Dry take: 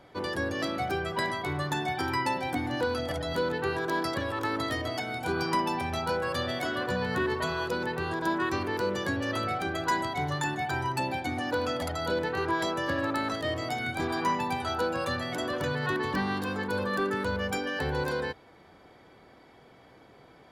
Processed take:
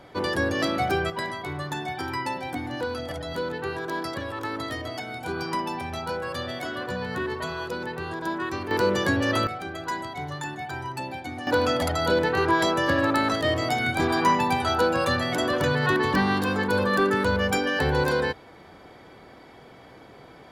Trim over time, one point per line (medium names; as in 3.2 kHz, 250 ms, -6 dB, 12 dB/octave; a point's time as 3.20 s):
+6 dB
from 1.10 s -1 dB
from 8.71 s +7 dB
from 9.47 s -3 dB
from 11.47 s +7 dB